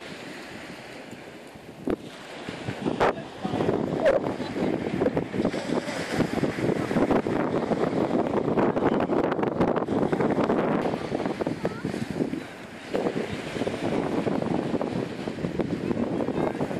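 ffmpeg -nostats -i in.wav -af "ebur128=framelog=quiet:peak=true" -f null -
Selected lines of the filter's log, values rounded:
Integrated loudness:
  I:         -26.9 LUFS
  Threshold: -37.4 LUFS
Loudness range:
  LRA:         5.1 LU
  Threshold: -47.0 LUFS
  LRA low:   -30.0 LUFS
  LRA high:  -24.9 LUFS
True peak:
  Peak:      -10.1 dBFS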